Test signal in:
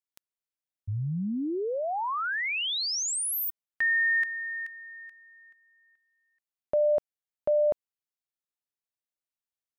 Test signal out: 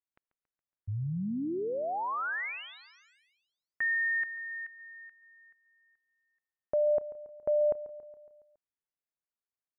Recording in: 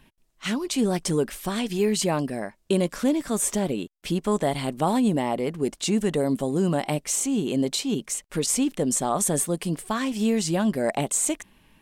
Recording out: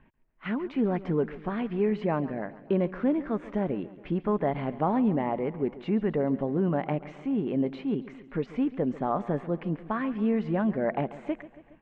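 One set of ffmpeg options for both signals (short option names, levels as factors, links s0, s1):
-filter_complex "[0:a]lowpass=f=2100:w=0.5412,lowpass=f=2100:w=1.3066,asplit=2[s0][s1];[s1]aecho=0:1:139|278|417|556|695|834:0.141|0.0833|0.0492|0.029|0.0171|0.0101[s2];[s0][s2]amix=inputs=2:normalize=0,volume=0.708"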